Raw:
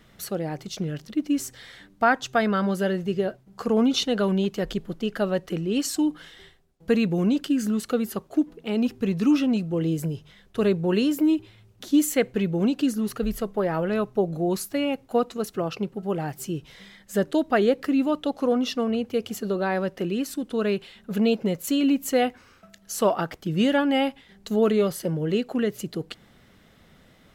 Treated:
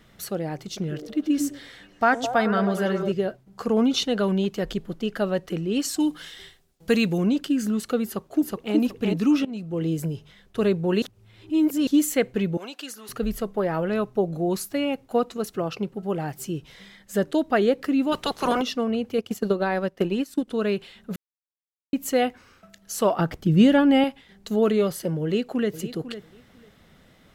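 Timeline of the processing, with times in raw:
0.60–3.12 s: repeats whose band climbs or falls 105 ms, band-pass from 350 Hz, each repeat 0.7 oct, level -3 dB
6.00–7.18 s: treble shelf 2.4 kHz +10 dB
8.05–8.76 s: echo throw 370 ms, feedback 25%, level -1 dB
9.45–10.02 s: fade in equal-power, from -19 dB
11.02–11.87 s: reverse
12.57–13.09 s: high-pass 840 Hz
18.11–18.61 s: spectral peaks clipped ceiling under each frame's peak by 24 dB
19.18–20.48 s: transient shaper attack +7 dB, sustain -10 dB
21.16–21.93 s: mute
23.19–24.04 s: bass shelf 280 Hz +11 dB
25.23–25.73 s: echo throw 500 ms, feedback 15%, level -13 dB

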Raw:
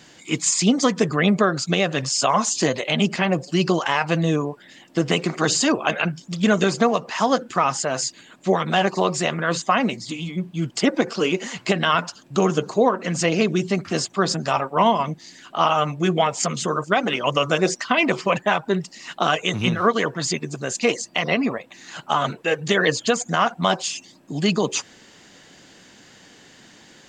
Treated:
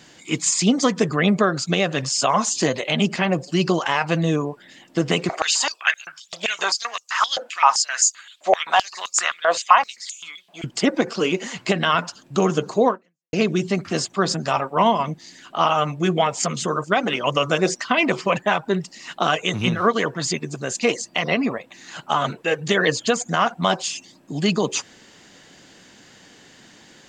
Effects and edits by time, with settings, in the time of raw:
5.29–10.64 s: step-sequenced high-pass 7.7 Hz 670–6700 Hz
12.91–13.33 s: fade out exponential

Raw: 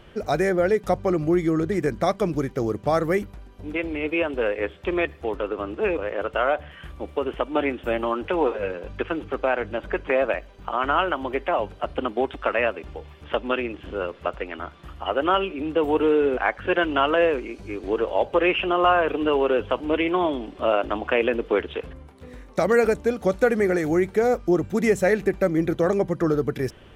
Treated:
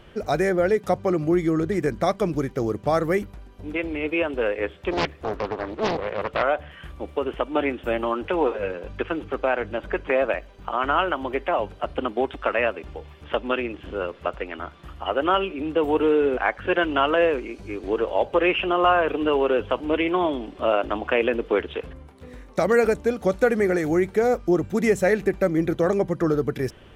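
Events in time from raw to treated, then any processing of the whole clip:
0.77–1.32 s: high-pass 84 Hz
4.91–6.43 s: loudspeaker Doppler distortion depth 0.9 ms

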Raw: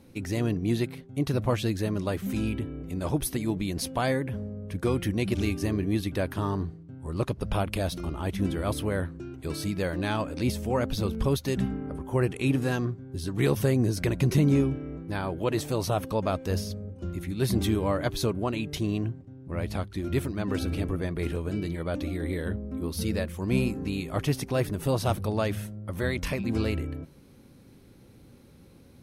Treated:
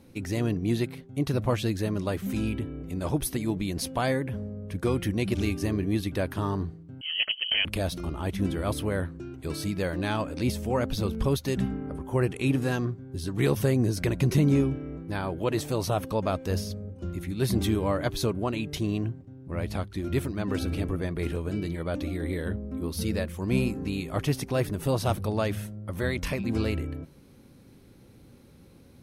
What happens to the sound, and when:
7.01–7.65 s: frequency inversion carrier 3.1 kHz

